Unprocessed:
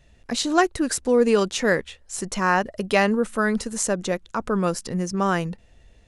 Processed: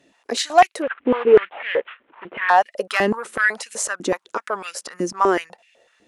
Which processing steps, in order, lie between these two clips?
0:00.82–0:02.49: variable-slope delta modulation 16 kbit/s
harmonic generator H 5 −17 dB, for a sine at −4 dBFS
high-pass on a step sequencer 8 Hz 290–2,400 Hz
level −3.5 dB

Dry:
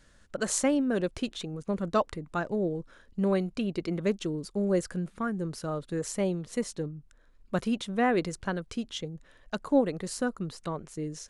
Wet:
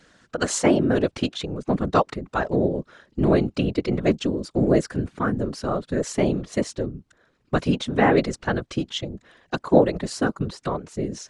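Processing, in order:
band-pass filter 110–6,500 Hz
random phases in short frames
level +7.5 dB

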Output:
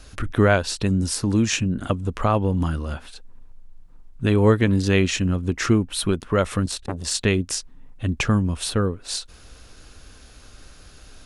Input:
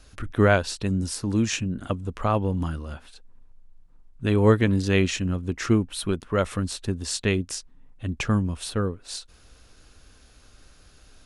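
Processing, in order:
downward compressor 1.5 to 1, threshold −29 dBFS, peak gain reduction 6.5 dB
0:06.66–0:07.15: saturating transformer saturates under 1,100 Hz
level +7 dB

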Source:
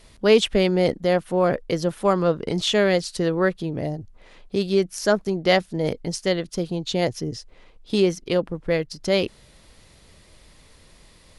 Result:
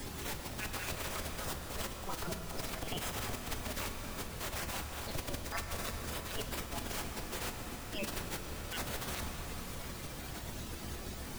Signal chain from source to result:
time-frequency cells dropped at random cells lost 79%
rotating-speaker cabinet horn 1 Hz
in parallel at −7 dB: bit-depth reduction 6 bits, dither triangular
on the sum: low-shelf EQ 310 Hz −9 dB
transient designer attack −10 dB, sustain +8 dB
gate on every frequency bin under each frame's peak −15 dB weak
spectral tilt −3 dB per octave
reversed playback
downward compressor, threshold −52 dBFS, peak gain reduction 20 dB
reversed playback
convolution reverb RT60 3.4 s, pre-delay 7 ms, DRR 4 dB
multiband upward and downward compressor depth 70%
level +15.5 dB

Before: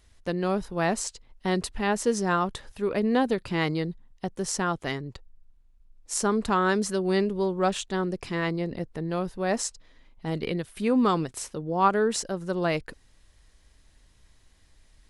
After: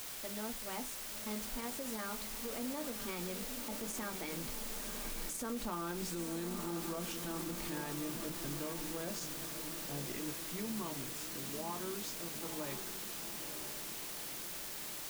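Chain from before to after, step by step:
source passing by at 0:05.66, 45 m/s, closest 7 metres
dynamic equaliser 590 Hz, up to +5 dB, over −53 dBFS, Q 3.6
on a send at −5.5 dB: convolution reverb RT60 0.15 s, pre-delay 3 ms
on the sum: downward compressor 4 to 1, threshold −51 dBFS, peak gain reduction 26 dB
in parallel at −7.5 dB: bit-depth reduction 8 bits, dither triangular
on the sum: feedback delay with all-pass diffusion 949 ms, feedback 60%, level −9 dB
brickwall limiter −41.5 dBFS, peak gain reduction 10 dB
level +10.5 dB

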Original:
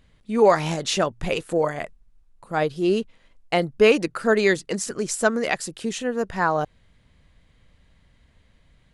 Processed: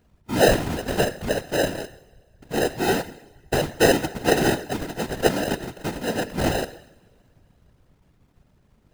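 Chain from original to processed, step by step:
decimation without filtering 39×
coupled-rooms reverb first 0.83 s, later 3.3 s, from −24 dB, DRR 11.5 dB
random phases in short frames
level −1 dB

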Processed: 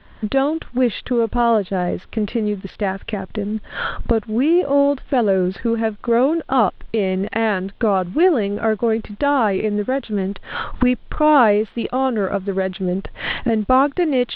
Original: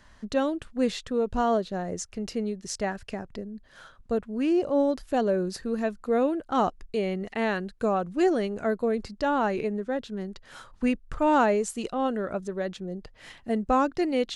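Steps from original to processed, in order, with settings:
camcorder AGC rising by 28 dB per second
background noise violet −47 dBFS
in parallel at −4 dB: slack as between gear wheels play −34 dBFS
on the sum: elliptic low-pass filter 3,500 Hz, stop band 50 dB
level +4 dB

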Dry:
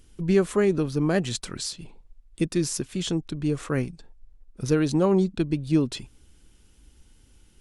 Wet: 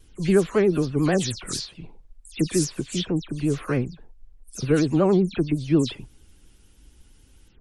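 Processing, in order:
every frequency bin delayed by itself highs early, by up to 127 ms
pitch vibrato 11 Hz 95 cents
level +2 dB

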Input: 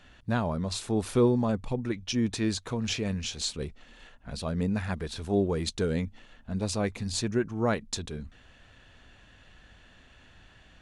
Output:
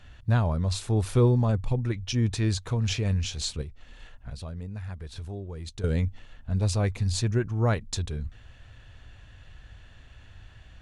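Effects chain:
low shelf with overshoot 150 Hz +8.5 dB, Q 1.5
0:03.61–0:05.84: downward compressor 5 to 1, threshold −35 dBFS, peak gain reduction 15 dB

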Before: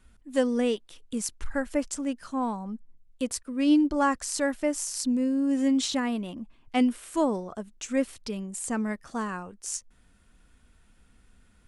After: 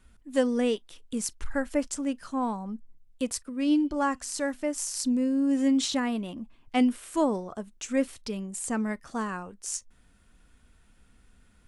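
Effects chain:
0:03.49–0:04.78: tuned comb filter 250 Hz, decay 1.1 s, mix 30%
on a send: convolution reverb, pre-delay 7 ms, DRR 23 dB

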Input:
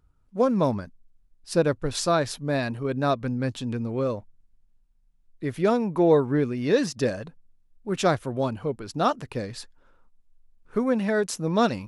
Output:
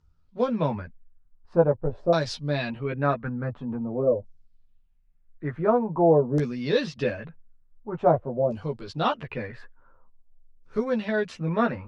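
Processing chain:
auto-filter low-pass saw down 0.47 Hz 510–6,000 Hz
multi-voice chorus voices 6, 0.45 Hz, delay 13 ms, depth 1.2 ms

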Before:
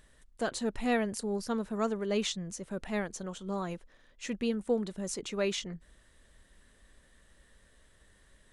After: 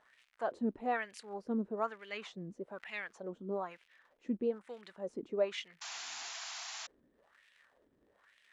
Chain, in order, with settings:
surface crackle 180 per second −47 dBFS
auto-filter band-pass sine 1.1 Hz 270–2,600 Hz
sound drawn into the spectrogram noise, 0:05.81–0:06.87, 640–7,400 Hz −48 dBFS
level +3.5 dB

